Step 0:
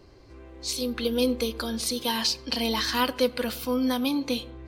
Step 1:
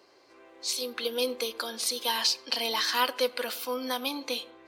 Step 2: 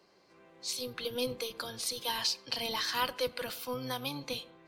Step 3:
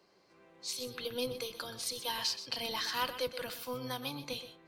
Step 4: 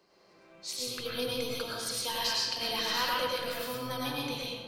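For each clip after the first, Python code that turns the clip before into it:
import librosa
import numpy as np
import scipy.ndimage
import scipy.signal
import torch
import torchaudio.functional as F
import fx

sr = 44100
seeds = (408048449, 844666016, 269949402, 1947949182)

y1 = scipy.signal.sosfilt(scipy.signal.butter(2, 530.0, 'highpass', fs=sr, output='sos'), x)
y2 = fx.octave_divider(y1, sr, octaves=1, level_db=-2.0)
y2 = F.gain(torch.from_numpy(y2), -5.5).numpy()
y3 = y2 + 10.0 ** (-12.0 / 20.0) * np.pad(y2, (int(125 * sr / 1000.0), 0))[:len(y2)]
y3 = F.gain(torch.from_numpy(y3), -2.5).numpy()
y4 = fx.rev_freeverb(y3, sr, rt60_s=1.1, hf_ratio=0.65, predelay_ms=65, drr_db=-4.5)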